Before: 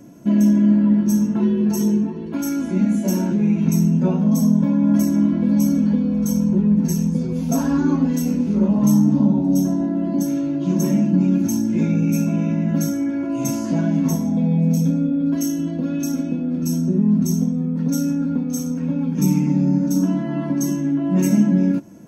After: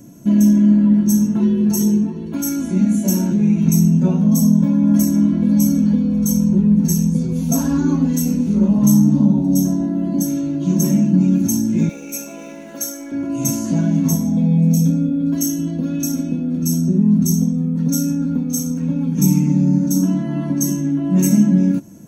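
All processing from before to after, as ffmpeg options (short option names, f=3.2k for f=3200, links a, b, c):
-filter_complex "[0:a]asettb=1/sr,asplit=3[a][b][c];[a]atrim=end=11.894[d];[b]atrim=start=11.89:end=13.12,asetpts=PTS-STARTPTS,afade=t=in:d=0.004:c=qsin,afade=t=out:st=1.226:d=0.004:c=qsin,highpass=f=390:w=0.5412,highpass=f=390:w=1.3066,aeval=exprs='sgn(val(0))*max(abs(val(0))-0.00237,0)':c=same[e];[c]atrim=start=13.116[f];[d][e]acrossfade=d=0.004:c1=hsin:c2=qsin[g];[g][f]acrossfade=d=0.004:c1=qsin:c2=hsin,bass=f=250:g=7,treble=f=4k:g=11,bandreject=f=5k:w=7.4,volume=-2dB"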